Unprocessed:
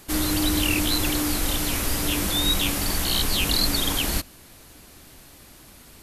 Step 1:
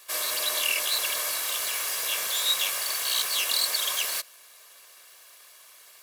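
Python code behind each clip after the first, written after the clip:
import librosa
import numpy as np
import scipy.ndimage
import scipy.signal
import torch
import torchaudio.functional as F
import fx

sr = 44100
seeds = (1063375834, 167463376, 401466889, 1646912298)

y = fx.lower_of_two(x, sr, delay_ms=1.8)
y = scipy.signal.sosfilt(scipy.signal.butter(2, 860.0, 'highpass', fs=sr, output='sos'), y)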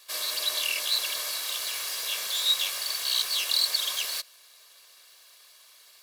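y = fx.peak_eq(x, sr, hz=4200.0, db=8.0, octaves=0.88)
y = y * librosa.db_to_amplitude(-5.5)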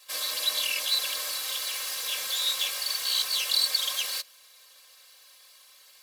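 y = x + 0.98 * np.pad(x, (int(3.8 * sr / 1000.0), 0))[:len(x)]
y = y * librosa.db_to_amplitude(-3.0)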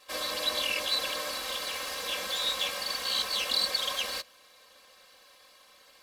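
y = fx.tilt_eq(x, sr, slope=-4.0)
y = y * librosa.db_to_amplitude(5.0)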